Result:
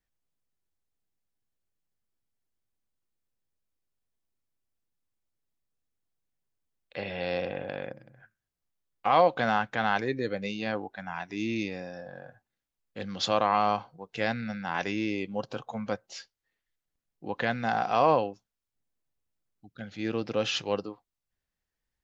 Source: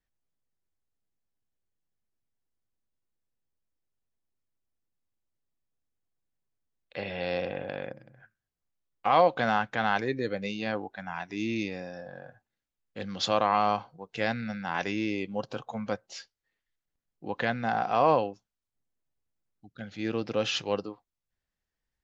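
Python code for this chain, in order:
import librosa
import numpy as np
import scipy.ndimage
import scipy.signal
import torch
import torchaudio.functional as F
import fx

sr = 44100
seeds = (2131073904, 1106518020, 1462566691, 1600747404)

y = fx.high_shelf(x, sr, hz=3500.0, db=7.0, at=(17.5, 18.06))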